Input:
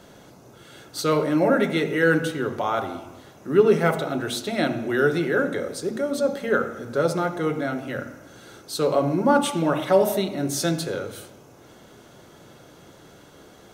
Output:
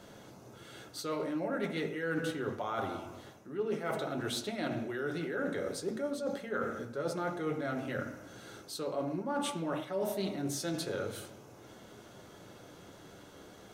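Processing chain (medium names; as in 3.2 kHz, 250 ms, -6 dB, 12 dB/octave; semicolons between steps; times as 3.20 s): reverse; compression 12:1, threshold -27 dBFS, peak gain reduction 17 dB; reverse; flange 0.27 Hz, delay 9 ms, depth 1.5 ms, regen -57%; loudspeaker Doppler distortion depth 0.1 ms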